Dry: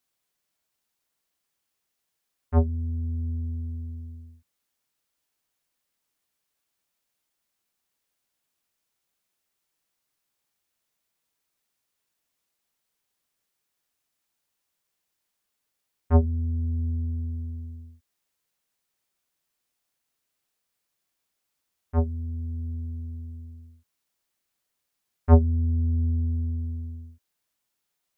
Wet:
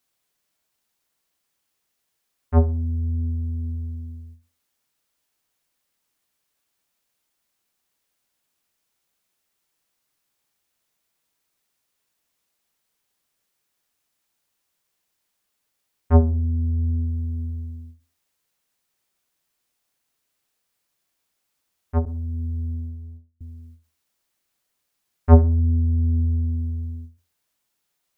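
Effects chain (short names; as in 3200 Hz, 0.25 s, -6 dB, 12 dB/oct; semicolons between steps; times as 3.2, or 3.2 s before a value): tape echo 62 ms, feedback 39%, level -14 dB, low-pass 1400 Hz; 22.05–23.41 gate -33 dBFS, range -39 dB; ending taper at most 190 dB/s; gain +4 dB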